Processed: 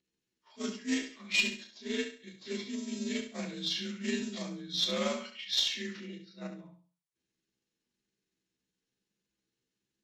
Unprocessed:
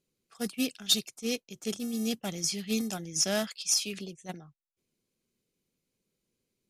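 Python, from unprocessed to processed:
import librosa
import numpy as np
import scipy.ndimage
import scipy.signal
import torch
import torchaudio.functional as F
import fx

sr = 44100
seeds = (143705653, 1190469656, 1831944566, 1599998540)

y = fx.partial_stretch(x, sr, pct=85)
y = fx.stretch_grains(y, sr, factor=1.5, grain_ms=93.0)
y = fx.cheby_harmonics(y, sr, harmonics=(4, 6, 7), levels_db=(-26, -37, -33), full_scale_db=-13.0)
y = fx.echo_feedback(y, sr, ms=68, feedback_pct=32, wet_db=-8.5)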